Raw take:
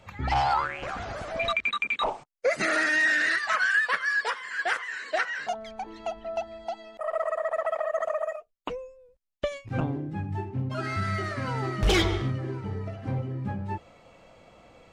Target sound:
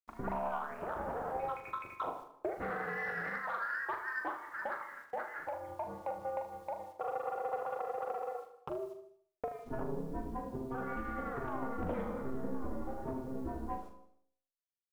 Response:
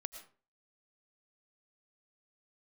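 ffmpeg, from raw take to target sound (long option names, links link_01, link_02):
-filter_complex "[0:a]lowpass=frequency=1200:width=0.5412,lowpass=frequency=1200:width=1.3066,aemphasis=mode=production:type=75fm,agate=range=-28dB:threshold=-44dB:ratio=16:detection=peak,lowshelf=frequency=160:gain=-9.5,acompressor=threshold=-36dB:ratio=5,aeval=exprs='val(0)*sin(2*PI*130*n/s)':channel_layout=same,asoftclip=type=tanh:threshold=-30dB,tremolo=f=11:d=0.34,acrusher=bits=11:mix=0:aa=0.000001,asplit=2[link_01][link_02];[link_02]adelay=41,volume=-7dB[link_03];[link_01][link_03]amix=inputs=2:normalize=0,aecho=1:1:77|154|231|308:0.266|0.114|0.0492|0.0212,asplit=2[link_04][link_05];[1:a]atrim=start_sample=2205,asetrate=29547,aresample=44100[link_06];[link_05][link_06]afir=irnorm=-1:irlink=0,volume=-8dB[link_07];[link_04][link_07]amix=inputs=2:normalize=0,volume=2.5dB"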